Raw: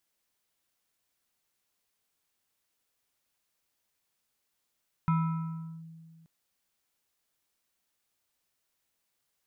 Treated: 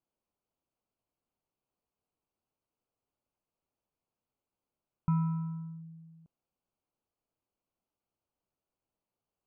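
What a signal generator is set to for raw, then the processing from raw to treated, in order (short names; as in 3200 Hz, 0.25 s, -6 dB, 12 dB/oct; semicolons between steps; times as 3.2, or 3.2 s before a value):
FM tone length 1.18 s, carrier 163 Hz, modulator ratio 7.04, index 0.6, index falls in 0.75 s linear, decay 2.09 s, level -21.5 dB
running mean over 24 samples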